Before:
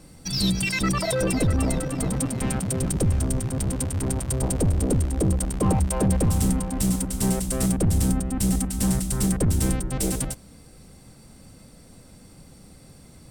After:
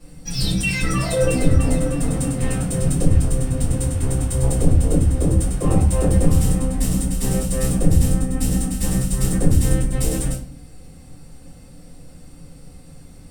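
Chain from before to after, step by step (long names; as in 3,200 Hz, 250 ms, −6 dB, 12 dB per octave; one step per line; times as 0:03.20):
rectangular room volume 31 cubic metres, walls mixed, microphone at 1.8 metres
level −8.5 dB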